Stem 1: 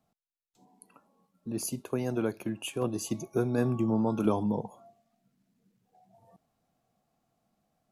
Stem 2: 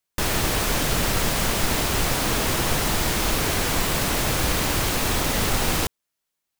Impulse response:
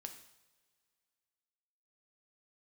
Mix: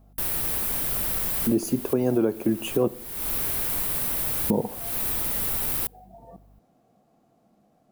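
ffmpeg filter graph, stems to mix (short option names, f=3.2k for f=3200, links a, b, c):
-filter_complex "[0:a]equalizer=f=360:t=o:w=2.8:g=12,volume=2dB,asplit=3[a][b][c];[a]atrim=end=2.88,asetpts=PTS-STARTPTS,afade=t=out:st=2.876:d=0.004:c=hsin[d];[b]atrim=start=2.88:end=4.5,asetpts=PTS-STARTPTS,volume=0[e];[c]atrim=start=4.5,asetpts=PTS-STARTPTS,afade=t=in:d=0.004:c=hsin[f];[d][e][f]concat=n=3:v=0:a=1,asplit=3[g][h][i];[h]volume=-5dB[j];[1:a]aeval=exprs='val(0)+0.00891*(sin(2*PI*50*n/s)+sin(2*PI*2*50*n/s)/2+sin(2*PI*3*50*n/s)/3+sin(2*PI*4*50*n/s)/4+sin(2*PI*5*50*n/s)/5)':c=same,aexciter=amount=3.2:drive=9.4:freq=9.1k,volume=-12.5dB,asplit=2[k][l];[l]volume=-23dB[m];[i]apad=whole_len=290637[n];[k][n]sidechaincompress=threshold=-32dB:ratio=5:attack=16:release=309[o];[2:a]atrim=start_sample=2205[p];[j][m]amix=inputs=2:normalize=0[q];[q][p]afir=irnorm=-1:irlink=0[r];[g][o][r]amix=inputs=3:normalize=0,alimiter=limit=-12dB:level=0:latency=1:release=481"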